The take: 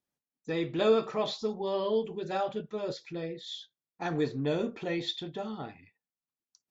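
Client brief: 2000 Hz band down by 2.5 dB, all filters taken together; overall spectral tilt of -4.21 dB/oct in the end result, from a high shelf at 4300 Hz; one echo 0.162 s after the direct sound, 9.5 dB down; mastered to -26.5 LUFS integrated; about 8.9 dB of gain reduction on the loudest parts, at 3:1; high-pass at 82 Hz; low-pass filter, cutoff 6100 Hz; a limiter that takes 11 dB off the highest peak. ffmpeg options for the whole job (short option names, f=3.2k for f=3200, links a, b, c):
-af "highpass=82,lowpass=6.1k,equalizer=f=2k:t=o:g=-4.5,highshelf=f=4.3k:g=6,acompressor=threshold=-31dB:ratio=3,alimiter=level_in=9dB:limit=-24dB:level=0:latency=1,volume=-9dB,aecho=1:1:162:0.335,volume=15dB"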